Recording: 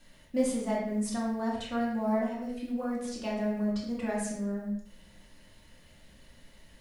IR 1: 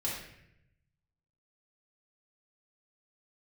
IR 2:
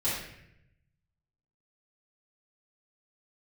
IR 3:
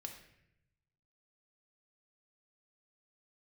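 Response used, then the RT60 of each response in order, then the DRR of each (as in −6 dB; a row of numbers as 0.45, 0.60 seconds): 1; 0.75, 0.75, 0.80 seconds; −6.5, −13.5, 3.0 decibels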